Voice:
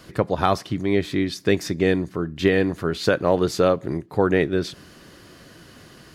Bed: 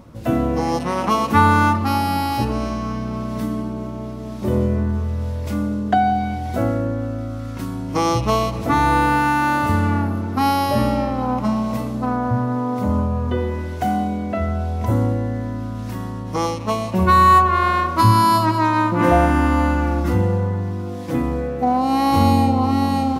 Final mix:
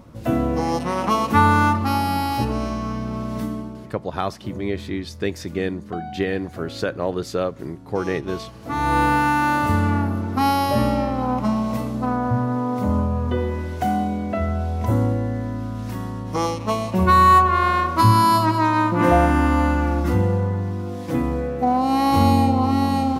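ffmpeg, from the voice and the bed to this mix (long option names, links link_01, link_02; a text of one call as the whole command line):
ffmpeg -i stem1.wav -i stem2.wav -filter_complex "[0:a]adelay=3750,volume=-5dB[link_01];[1:a]volume=14dB,afade=type=out:start_time=3.36:duration=0.59:silence=0.177828,afade=type=in:start_time=8.61:duration=0.4:silence=0.16788[link_02];[link_01][link_02]amix=inputs=2:normalize=0" out.wav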